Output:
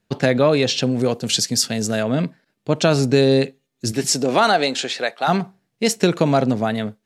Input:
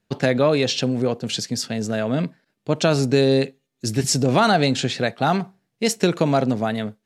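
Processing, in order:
0:00.99–0:02.03: high-shelf EQ 4,600 Hz +10.5 dB
0:03.91–0:05.27: high-pass filter 200 Hz → 620 Hz 12 dB per octave
level +2 dB

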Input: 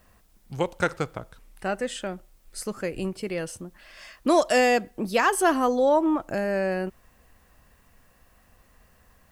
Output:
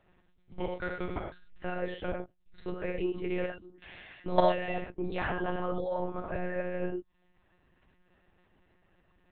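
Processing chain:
notch filter 1,100 Hz, Q 9
output level in coarse steps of 17 dB
reverb reduction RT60 0.69 s
reverb whose tail is shaped and stops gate 140 ms flat, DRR −0.5 dB
one-pitch LPC vocoder at 8 kHz 180 Hz
parametric band 350 Hz +3.5 dB 0.37 octaves

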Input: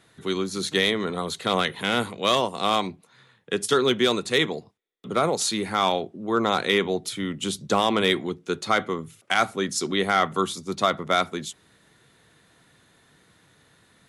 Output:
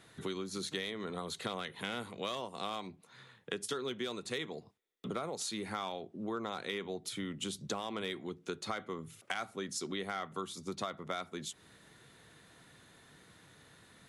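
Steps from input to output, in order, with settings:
downward compressor 5 to 1, threshold −36 dBFS, peak gain reduction 18 dB
level −1 dB

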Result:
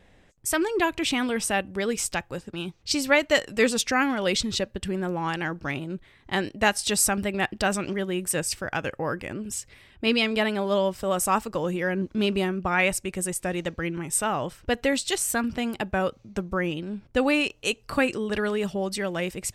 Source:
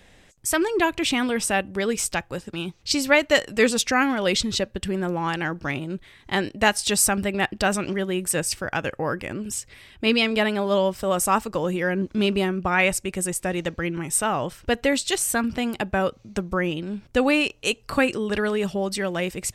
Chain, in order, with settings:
pitch vibrato 2.8 Hz 25 cents
one half of a high-frequency compander decoder only
level −2.5 dB

